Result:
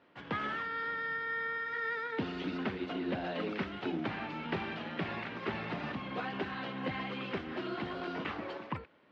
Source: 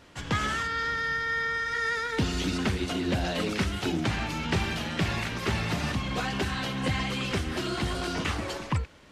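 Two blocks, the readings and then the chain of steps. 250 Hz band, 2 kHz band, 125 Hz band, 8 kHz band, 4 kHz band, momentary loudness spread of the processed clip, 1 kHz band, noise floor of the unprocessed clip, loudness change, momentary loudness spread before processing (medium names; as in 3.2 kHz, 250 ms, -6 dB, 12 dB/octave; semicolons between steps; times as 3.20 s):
-7.0 dB, -7.5 dB, -14.0 dB, under -30 dB, -12.5 dB, 4 LU, -6.0 dB, -41 dBFS, -8.0 dB, 3 LU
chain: in parallel at -5 dB: crossover distortion -45.5 dBFS; on the sum: band-pass 220–7000 Hz; distance through air 360 m; trim -7.5 dB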